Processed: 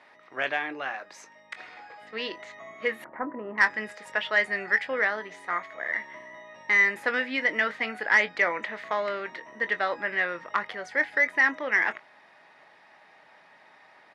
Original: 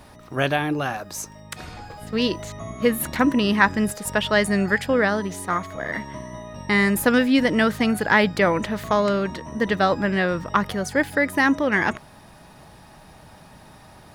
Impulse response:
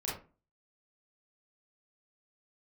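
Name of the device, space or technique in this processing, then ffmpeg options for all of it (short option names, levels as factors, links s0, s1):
intercom: -filter_complex "[0:a]highpass=480,lowpass=3800,equalizer=f=2000:t=o:w=0.51:g=11,asoftclip=type=tanh:threshold=0.794,asplit=2[s0][s1];[s1]adelay=23,volume=0.251[s2];[s0][s2]amix=inputs=2:normalize=0,asettb=1/sr,asplit=3[s3][s4][s5];[s3]atrim=end=3.044[s6];[s4]atrim=start=3.04:end=3.58,asetpts=PTS-STARTPTS,afade=t=in:d=0.004:c=qsin,afade=t=out:st=0.536:d=0.004:c=qsin,lowpass=f=1200:w=0.5412,lowpass=f=1200:w=1.3066[s7];[s5]atrim=start=3.576[s8];[s6][s7]acrossfade=d=0.004:c1=hsin:c2=qsin[s9];[s9][s8]acrossfade=d=0.004:c1=qsin:c2=hsin,volume=0.422"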